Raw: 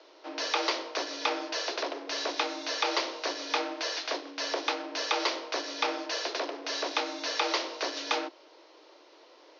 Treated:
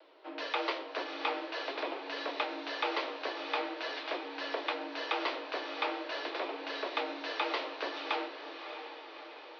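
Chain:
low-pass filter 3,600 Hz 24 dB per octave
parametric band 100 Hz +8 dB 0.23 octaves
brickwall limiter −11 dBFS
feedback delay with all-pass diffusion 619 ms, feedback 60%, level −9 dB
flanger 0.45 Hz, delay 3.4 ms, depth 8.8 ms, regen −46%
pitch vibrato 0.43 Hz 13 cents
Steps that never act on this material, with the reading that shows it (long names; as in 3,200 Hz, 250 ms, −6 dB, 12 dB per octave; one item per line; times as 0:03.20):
parametric band 100 Hz: nothing at its input below 250 Hz
brickwall limiter −11 dBFS: peak of its input −14.0 dBFS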